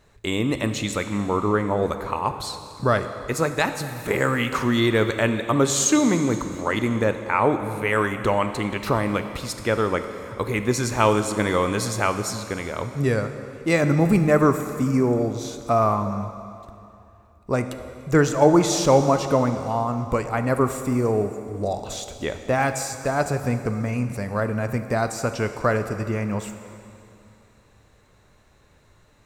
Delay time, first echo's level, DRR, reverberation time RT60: none, none, 8.0 dB, 2.7 s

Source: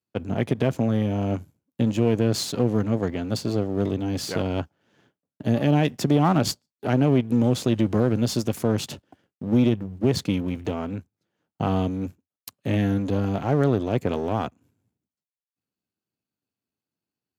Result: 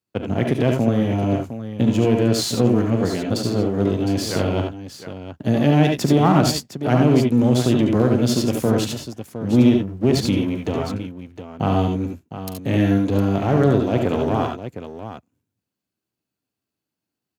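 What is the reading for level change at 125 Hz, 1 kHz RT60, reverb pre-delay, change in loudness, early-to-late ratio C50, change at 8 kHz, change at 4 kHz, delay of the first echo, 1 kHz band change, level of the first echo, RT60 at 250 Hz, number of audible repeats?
+4.5 dB, none, none, +4.5 dB, none, +5.0 dB, +5.0 dB, 41 ms, +5.0 dB, -14.0 dB, none, 3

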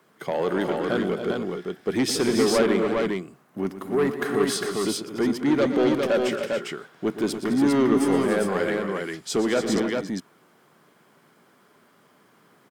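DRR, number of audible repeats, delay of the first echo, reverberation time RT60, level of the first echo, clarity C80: none, 4, 0.119 s, none, -12.5 dB, none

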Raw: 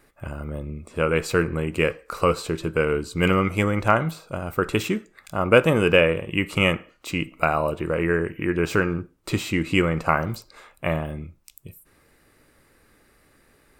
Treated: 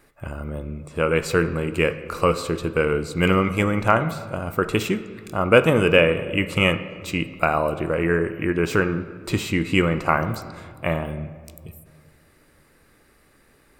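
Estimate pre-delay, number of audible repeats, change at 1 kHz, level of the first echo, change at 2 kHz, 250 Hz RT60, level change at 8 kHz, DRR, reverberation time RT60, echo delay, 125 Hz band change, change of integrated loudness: 11 ms, none, +1.5 dB, none, +1.0 dB, 2.3 s, +1.0 dB, 12.0 dB, 2.0 s, none, +1.0 dB, +1.5 dB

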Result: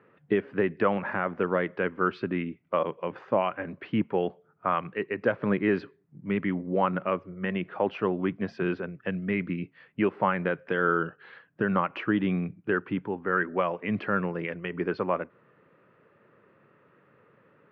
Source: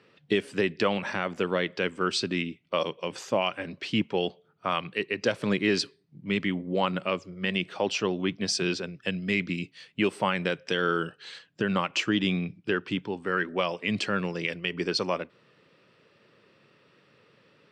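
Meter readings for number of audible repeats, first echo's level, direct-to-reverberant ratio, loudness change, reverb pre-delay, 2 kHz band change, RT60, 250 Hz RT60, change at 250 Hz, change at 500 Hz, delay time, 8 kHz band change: none, none, none, 0.0 dB, none, -1.5 dB, none, none, +0.5 dB, +1.0 dB, none, under -35 dB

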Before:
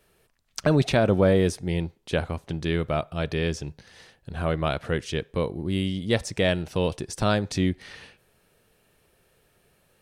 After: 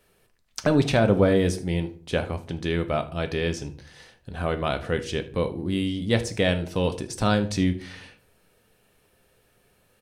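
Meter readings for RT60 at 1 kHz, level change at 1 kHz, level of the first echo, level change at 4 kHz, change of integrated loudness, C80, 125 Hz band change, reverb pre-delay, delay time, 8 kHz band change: 0.40 s, +1.0 dB, -19.0 dB, +0.5 dB, +0.5 dB, 20.0 dB, 0.0 dB, 4 ms, 77 ms, +0.5 dB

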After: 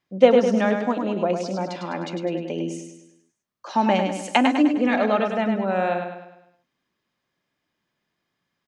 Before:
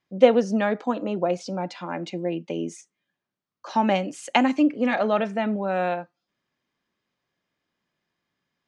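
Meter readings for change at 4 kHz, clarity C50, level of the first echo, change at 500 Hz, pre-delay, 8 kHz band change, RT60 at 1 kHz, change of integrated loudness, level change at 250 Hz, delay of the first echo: +2.0 dB, none, -6.0 dB, +2.0 dB, none, +2.0 dB, none, +2.0 dB, +2.5 dB, 0.102 s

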